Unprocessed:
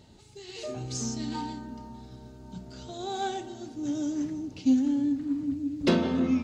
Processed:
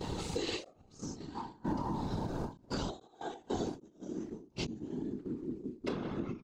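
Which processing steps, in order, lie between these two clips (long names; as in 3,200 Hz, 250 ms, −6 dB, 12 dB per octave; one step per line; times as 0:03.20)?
parametric band 1,100 Hz +6 dB 0.5 octaves
double-tracking delay 26 ms −9 dB
random phases in short frames
gate with flip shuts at −27 dBFS, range −27 dB
downward compressor 10 to 1, threshold −49 dBFS, peak gain reduction 16.5 dB
high-shelf EQ 3,100 Hz −4 dB
noise gate −59 dBFS, range −14 dB
every ending faded ahead of time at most 180 dB per second
level +17.5 dB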